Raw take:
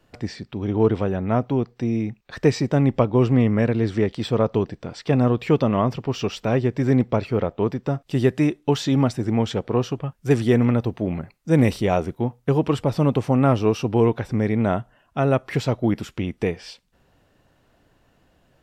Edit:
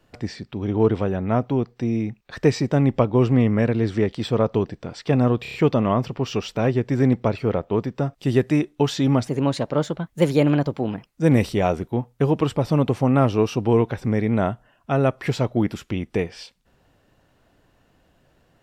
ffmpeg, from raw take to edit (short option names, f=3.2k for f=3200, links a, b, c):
-filter_complex "[0:a]asplit=7[a][b][c][d][e][f][g];[a]atrim=end=5.452[h];[b]atrim=start=5.418:end=5.452[i];[c]atrim=start=5.418:end=5.452[j];[d]atrim=start=5.418:end=5.452[k];[e]atrim=start=5.418:end=9.164[l];[f]atrim=start=9.16:end=11.34,asetpts=PTS-STARTPTS,asetrate=53802,aresample=44100[m];[g]atrim=start=11.336[n];[h][i]acrossfade=d=0.004:c1=hsin:c2=hsin[o];[o][j]acrossfade=d=0.004:c1=hsin:c2=hsin[p];[p][k]acrossfade=d=0.004:c1=hsin:c2=hsin[q];[q][l]acrossfade=d=0.004:c1=hsin:c2=hsin[r];[r][m]acrossfade=d=0.004:c1=hsin:c2=hsin[s];[s][n]acrossfade=d=0.004:c1=hsin:c2=hsin"